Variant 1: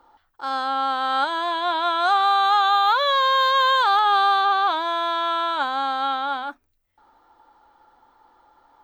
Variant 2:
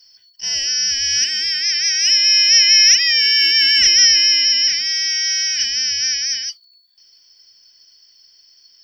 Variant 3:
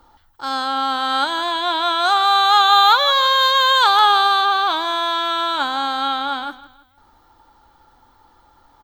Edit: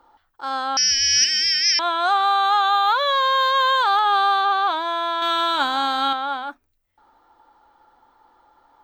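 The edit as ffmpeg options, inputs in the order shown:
ffmpeg -i take0.wav -i take1.wav -i take2.wav -filter_complex "[0:a]asplit=3[link_01][link_02][link_03];[link_01]atrim=end=0.772[link_04];[1:a]atrim=start=0.768:end=1.792[link_05];[link_02]atrim=start=1.788:end=5.222[link_06];[2:a]atrim=start=5.218:end=6.132[link_07];[link_03]atrim=start=6.128[link_08];[link_04][link_05]acrossfade=duration=0.004:curve1=hsin:curve2=hsin[link_09];[link_09][link_06]acrossfade=duration=0.004:curve1=hsin:curve2=hsin[link_10];[link_10][link_07]acrossfade=duration=0.004:curve1=hsin:curve2=hsin[link_11];[link_11][link_08]acrossfade=duration=0.004:curve1=hsin:curve2=hsin" out.wav

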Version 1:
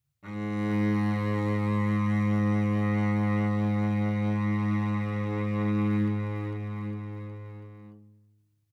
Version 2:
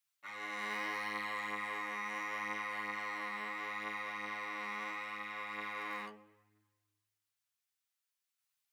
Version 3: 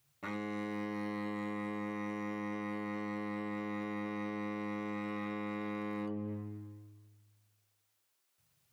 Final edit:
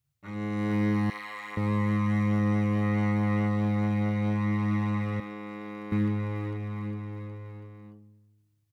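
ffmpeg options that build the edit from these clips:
ffmpeg -i take0.wav -i take1.wav -i take2.wav -filter_complex "[0:a]asplit=3[link_01][link_02][link_03];[link_01]atrim=end=1.102[link_04];[1:a]atrim=start=1.098:end=1.572[link_05];[link_02]atrim=start=1.568:end=5.202[link_06];[2:a]atrim=start=5.198:end=5.922[link_07];[link_03]atrim=start=5.918[link_08];[link_04][link_05]acrossfade=duration=0.004:curve1=hsin:curve2=hsin[link_09];[link_09][link_06]acrossfade=duration=0.004:curve1=hsin:curve2=hsin[link_10];[link_10][link_07]acrossfade=duration=0.004:curve1=hsin:curve2=hsin[link_11];[link_11][link_08]acrossfade=duration=0.004:curve1=hsin:curve2=hsin" out.wav

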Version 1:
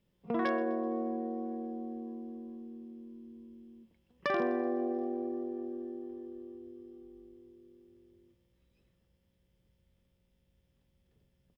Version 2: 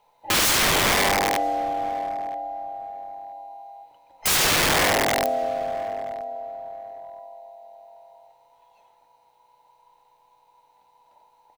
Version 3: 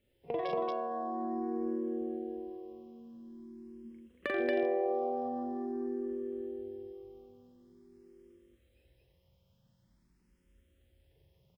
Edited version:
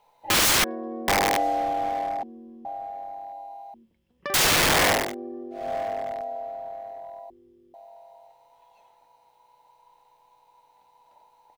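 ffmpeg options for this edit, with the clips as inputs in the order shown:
ffmpeg -i take0.wav -i take1.wav -filter_complex "[0:a]asplit=5[link_01][link_02][link_03][link_04][link_05];[1:a]asplit=6[link_06][link_07][link_08][link_09][link_10][link_11];[link_06]atrim=end=0.642[link_12];[link_01]atrim=start=0.638:end=1.082[link_13];[link_07]atrim=start=1.078:end=2.232[link_14];[link_02]atrim=start=2.228:end=2.652[link_15];[link_08]atrim=start=2.648:end=3.742[link_16];[link_03]atrim=start=3.738:end=4.342[link_17];[link_09]atrim=start=4.338:end=5.15[link_18];[link_04]atrim=start=4.91:end=5.74[link_19];[link_10]atrim=start=5.5:end=7.302[link_20];[link_05]atrim=start=7.298:end=7.742[link_21];[link_11]atrim=start=7.738[link_22];[link_12][link_13]acrossfade=duration=0.004:curve1=hsin:curve2=hsin[link_23];[link_23][link_14]acrossfade=duration=0.004:curve1=hsin:curve2=hsin[link_24];[link_24][link_15]acrossfade=duration=0.004:curve1=hsin:curve2=hsin[link_25];[link_25][link_16]acrossfade=duration=0.004:curve1=hsin:curve2=hsin[link_26];[link_26][link_17]acrossfade=duration=0.004:curve1=hsin:curve2=hsin[link_27];[link_27][link_18]acrossfade=duration=0.004:curve1=hsin:curve2=hsin[link_28];[link_28][link_19]acrossfade=duration=0.24:curve1=tri:curve2=tri[link_29];[link_29][link_20]acrossfade=duration=0.24:curve1=tri:curve2=tri[link_30];[link_30][link_21]acrossfade=duration=0.004:curve1=hsin:curve2=hsin[link_31];[link_31][link_22]acrossfade=duration=0.004:curve1=hsin:curve2=hsin" out.wav

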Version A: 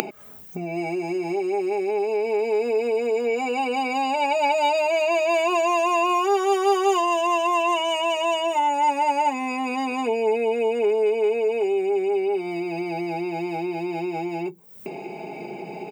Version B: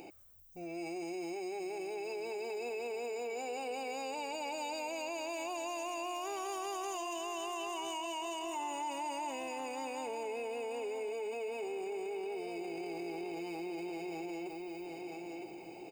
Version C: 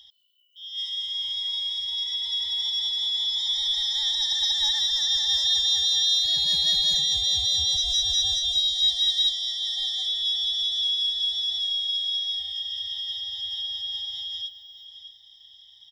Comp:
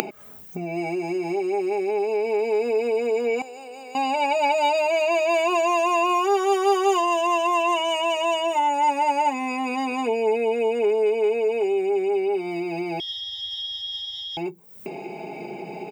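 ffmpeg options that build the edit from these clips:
ffmpeg -i take0.wav -i take1.wav -i take2.wav -filter_complex "[0:a]asplit=3[link_01][link_02][link_03];[link_01]atrim=end=3.422[link_04];[1:a]atrim=start=3.418:end=3.952[link_05];[link_02]atrim=start=3.948:end=13.002[link_06];[2:a]atrim=start=12.998:end=14.372[link_07];[link_03]atrim=start=14.368[link_08];[link_04][link_05]acrossfade=duration=0.004:curve1=hsin:curve2=hsin[link_09];[link_09][link_06]acrossfade=duration=0.004:curve1=hsin:curve2=hsin[link_10];[link_10][link_07]acrossfade=duration=0.004:curve1=hsin:curve2=hsin[link_11];[link_11][link_08]acrossfade=duration=0.004:curve1=hsin:curve2=hsin" out.wav

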